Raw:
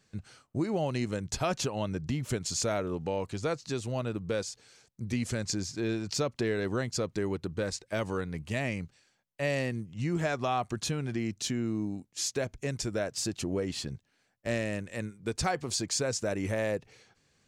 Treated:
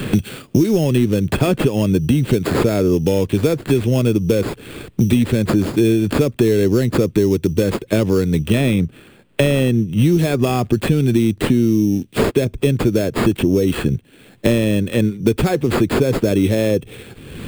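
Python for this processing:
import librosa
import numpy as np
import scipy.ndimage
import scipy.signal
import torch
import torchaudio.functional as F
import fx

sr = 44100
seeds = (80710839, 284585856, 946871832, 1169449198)

y = fx.peak_eq(x, sr, hz=2600.0, db=11.5, octaves=0.3)
y = fx.sample_hold(y, sr, seeds[0], rate_hz=5900.0, jitter_pct=0)
y = 10.0 ** (-21.5 / 20.0) * np.tanh(y / 10.0 ** (-21.5 / 20.0))
y = fx.low_shelf_res(y, sr, hz=550.0, db=9.5, q=1.5)
y = fx.band_squash(y, sr, depth_pct=100)
y = y * librosa.db_to_amplitude(7.5)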